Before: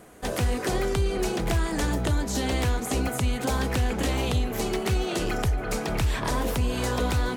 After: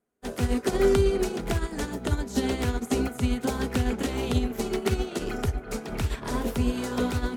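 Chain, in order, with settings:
mains-hum notches 60/120 Hz
hollow resonant body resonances 240/400/1,400 Hz, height 9 dB, ringing for 70 ms
expander for the loud parts 2.5 to 1, over −43 dBFS
level +2 dB

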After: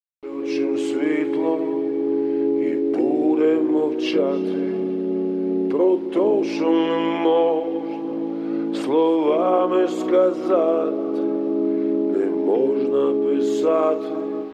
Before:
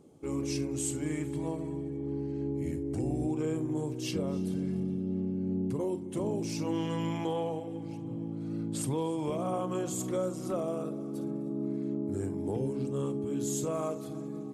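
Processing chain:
high-pass filter 330 Hz 24 dB per octave
dynamic equaliser 860 Hz, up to −4 dB, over −45 dBFS, Q 1.1
automatic gain control gain up to 14 dB
bit-depth reduction 8 bits, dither none
high-frequency loss of the air 340 metres
level +5 dB

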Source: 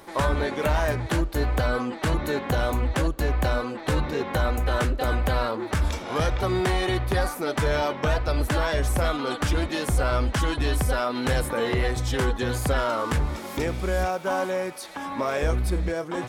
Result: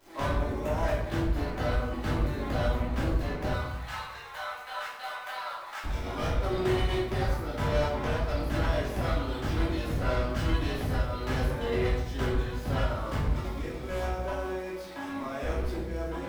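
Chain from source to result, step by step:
running median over 5 samples
0:00.38–0:00.83: gain on a spectral selection 1,200–5,100 Hz −8 dB
0:03.50–0:05.84: high-pass filter 830 Hz 24 dB per octave
output level in coarse steps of 12 dB
surface crackle 310 per second −42 dBFS
soft clipping −24 dBFS, distortion −13 dB
rectangular room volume 240 cubic metres, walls mixed, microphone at 2.9 metres
level −8 dB

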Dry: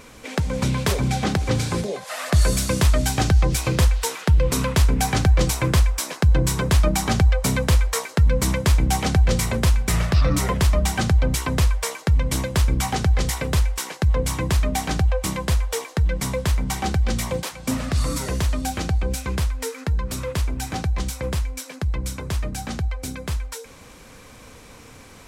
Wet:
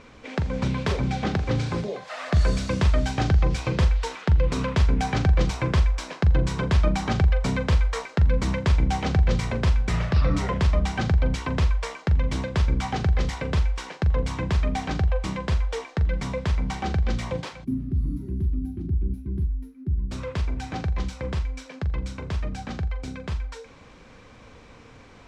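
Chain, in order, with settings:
high-frequency loss of the air 140 metres
flutter between parallel walls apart 7.2 metres, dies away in 0.22 s
gain on a spectral selection 0:17.64–0:20.12, 400–10,000 Hz −29 dB
level −3 dB

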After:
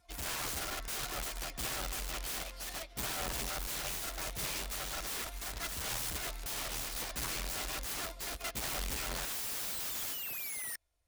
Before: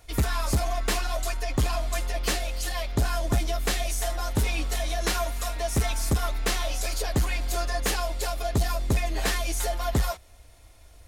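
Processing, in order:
low-shelf EQ 420 Hz −5 dB
backwards echo 580 ms −14 dB
sound drawn into the spectrogram fall, 0:09.32–0:10.76, 1,800–5,900 Hz −24 dBFS
wrap-around overflow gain 26.5 dB
expander for the loud parts 2.5 to 1, over −44 dBFS
level −5 dB

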